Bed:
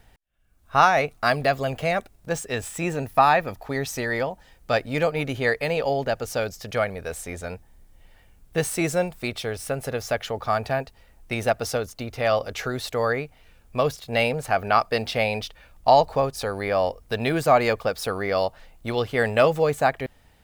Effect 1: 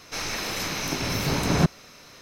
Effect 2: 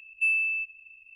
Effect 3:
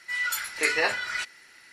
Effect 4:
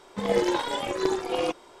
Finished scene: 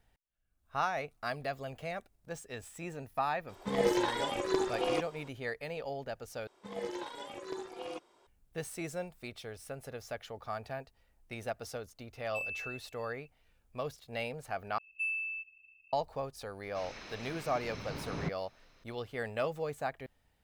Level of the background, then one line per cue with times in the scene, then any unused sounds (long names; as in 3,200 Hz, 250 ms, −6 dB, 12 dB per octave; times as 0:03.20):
bed −15.5 dB
0:03.49: mix in 4 −5 dB
0:06.47: overwrite with 4 −15 dB + low-shelf EQ 79 Hz −8.5 dB
0:12.13: mix in 2 −14 dB + hard clipping −21.5 dBFS
0:14.78: overwrite with 2 −10 dB
0:16.63: mix in 1 −16.5 dB + low-pass filter 4,400 Hz
not used: 3